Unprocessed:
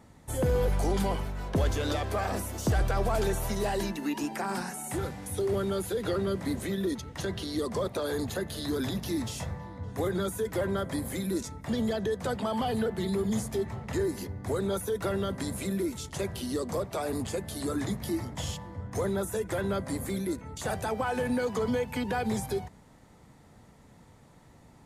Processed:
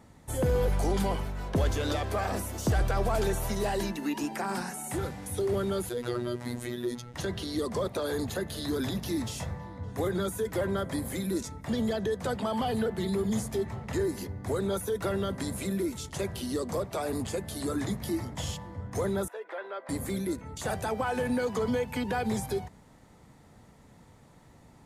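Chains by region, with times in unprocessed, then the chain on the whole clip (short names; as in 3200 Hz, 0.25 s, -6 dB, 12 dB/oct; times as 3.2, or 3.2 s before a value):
5.89–7.14 brick-wall FIR low-pass 13000 Hz + robotiser 121 Hz
19.28–19.89 Bessel high-pass 670 Hz, order 6 + upward compressor, threshold -39 dBFS + air absorption 390 m
whole clip: dry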